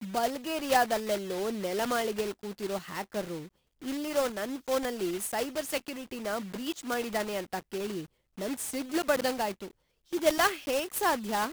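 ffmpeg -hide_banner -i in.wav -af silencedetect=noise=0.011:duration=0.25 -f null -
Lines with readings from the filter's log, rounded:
silence_start: 3.46
silence_end: 3.82 | silence_duration: 0.36
silence_start: 8.05
silence_end: 8.38 | silence_duration: 0.33
silence_start: 9.68
silence_end: 10.13 | silence_duration: 0.45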